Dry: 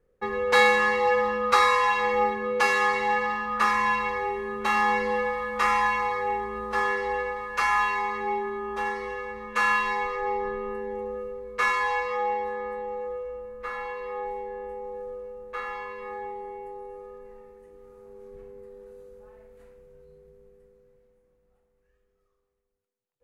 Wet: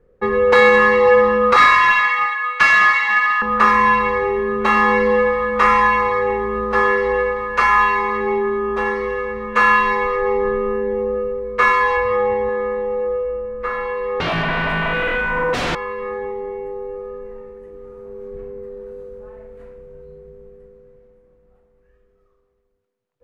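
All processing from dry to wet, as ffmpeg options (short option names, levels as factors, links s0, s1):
-filter_complex "[0:a]asettb=1/sr,asplit=3[s0][s1][s2];[s0]atrim=end=1.564[s3];[s1]atrim=start=1.56:end=3.42,asetpts=PTS-STARTPTS,afade=t=in:d=0.004:c=qsin,afade=t=out:st=1.856:d=0.004:c=qsin,highpass=f=1200:w=0.5412,highpass=f=1200:w=1.3066,asplit=2[s4][s5];[s5]highpass=f=720:p=1,volume=3.55,asoftclip=type=tanh:threshold=0.251[s6];[s4][s6]amix=inputs=2:normalize=0,lowpass=f=6300:p=1,volume=0.501[s7];[s2]atrim=start=3.416[s8];[s3][s7]acrossfade=d=0.004:c1=hsin:c2=qsin[s9];[s9][s8]acrossfade=d=0.004:c1=qsin:c2=hsin,asettb=1/sr,asplit=3[s10][s11][s12];[s10]atrim=end=11.974[s13];[s11]atrim=start=11.97:end=12.49,asetpts=PTS-STARTPTS,afade=t=in:d=0.004:c=qsin,afade=t=out:st=0.516:d=0.004:c=qsin,lowpass=f=3300:p=1,equalizer=f=87:t=o:w=1.3:g=12[s14];[s12]atrim=start=12.486[s15];[s13][s14]acrossfade=d=0.004:c1=hsin:c2=qsin[s16];[s16][s15]acrossfade=d=0.004:c1=qsin:c2=hsin,asettb=1/sr,asplit=3[s17][s18][s19];[s17]atrim=end=14.204[s20];[s18]atrim=start=14.2:end=15.75,asetpts=PTS-STARTPTS,afade=t=in:d=0.004:c=qsin,afade=t=out:st=1.546:d=0.004:c=qsin,aecho=1:1:6.3:0.78,atrim=end_sample=68355,acrossover=split=450|3000[s21][s22][s23];[s22]acompressor=threshold=0.00316:ratio=3:attack=3.2:release=140:knee=2.83:detection=peak[s24];[s21][s24][s23]amix=inputs=3:normalize=0,aeval=exprs='0.0447*sin(PI/2*7.08*val(0)/0.0447)':c=same[s25];[s19]atrim=start=15.746[s26];[s20][s25]acrossfade=d=0.004:c1=hsin:c2=qsin[s27];[s27][s26]acrossfade=d=0.004:c1=qsin:c2=hsin,lowpass=f=1400:p=1,bandreject=f=820:w=15,alimiter=level_in=5.01:limit=0.891:release=50:level=0:latency=1,volume=0.891"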